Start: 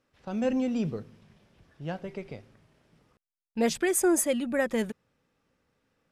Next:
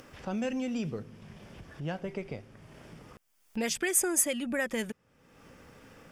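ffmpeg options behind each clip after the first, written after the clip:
-filter_complex "[0:a]acrossover=split=1600[a][b];[a]acompressor=threshold=-33dB:ratio=6[c];[c][b]amix=inputs=2:normalize=0,equalizer=f=4k:w=7:g=-9,acompressor=mode=upward:threshold=-40dB:ratio=2.5,volume=2.5dB"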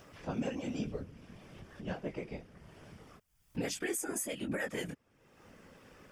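-af "flanger=delay=17:depth=6:speed=1.1,afftfilt=real='hypot(re,im)*cos(2*PI*random(0))':imag='hypot(re,im)*sin(2*PI*random(1))':win_size=512:overlap=0.75,alimiter=level_in=7dB:limit=-24dB:level=0:latency=1:release=244,volume=-7dB,volume=5.5dB"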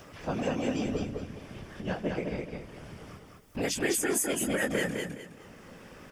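-filter_complex "[0:a]acrossover=split=320[a][b];[a]aeval=exprs='0.0158*(abs(mod(val(0)/0.0158+3,4)-2)-1)':c=same[c];[c][b]amix=inputs=2:normalize=0,aecho=1:1:208|416|624|832:0.668|0.194|0.0562|0.0163,volume=6.5dB"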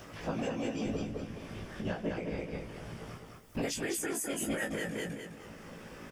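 -filter_complex "[0:a]alimiter=level_in=2dB:limit=-24dB:level=0:latency=1:release=452,volume=-2dB,asplit=2[a][b];[b]adelay=18,volume=-4.5dB[c];[a][c]amix=inputs=2:normalize=0"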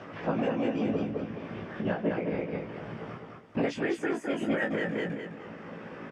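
-af "highpass=140,lowpass=2.2k,volume=6.5dB"

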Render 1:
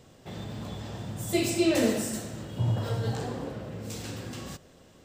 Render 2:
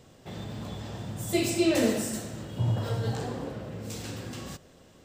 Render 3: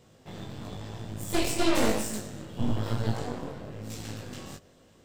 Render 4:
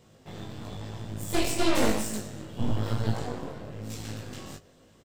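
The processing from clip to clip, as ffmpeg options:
-af anull
-af "aeval=exprs='0.237*(cos(1*acos(clip(val(0)/0.237,-1,1)))-cos(1*PI/2))+0.0668*(cos(6*acos(clip(val(0)/0.237,-1,1)))-cos(6*PI/2))':c=same,flanger=delay=18:depth=4:speed=1"
-filter_complex "[0:a]asplit=2[a][b];[b]adelay=19,volume=-12dB[c];[a][c]amix=inputs=2:normalize=0"

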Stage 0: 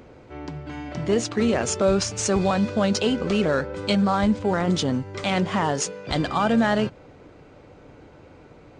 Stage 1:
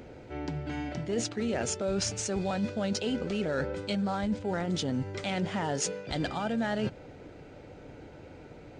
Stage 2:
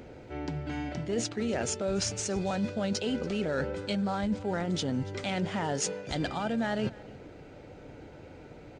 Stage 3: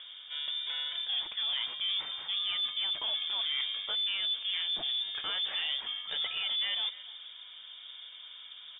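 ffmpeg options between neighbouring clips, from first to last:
-af "equalizer=f=1.1k:t=o:w=0.22:g=-12.5,areverse,acompressor=threshold=-28dB:ratio=6,areverse"
-af "aecho=1:1:285:0.0841"
-af "asoftclip=type=tanh:threshold=-27dB,lowpass=f=3.1k:t=q:w=0.5098,lowpass=f=3.1k:t=q:w=0.6013,lowpass=f=3.1k:t=q:w=0.9,lowpass=f=3.1k:t=q:w=2.563,afreqshift=-3700"

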